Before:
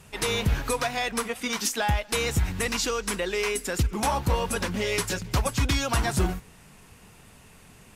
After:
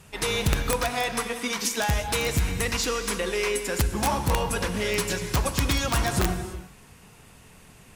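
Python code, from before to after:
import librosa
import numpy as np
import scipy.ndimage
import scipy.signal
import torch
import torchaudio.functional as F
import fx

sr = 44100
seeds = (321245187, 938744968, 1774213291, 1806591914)

y = fx.rev_gated(x, sr, seeds[0], gate_ms=370, shape='flat', drr_db=7.0)
y = (np.mod(10.0 ** (14.5 / 20.0) * y + 1.0, 2.0) - 1.0) / 10.0 ** (14.5 / 20.0)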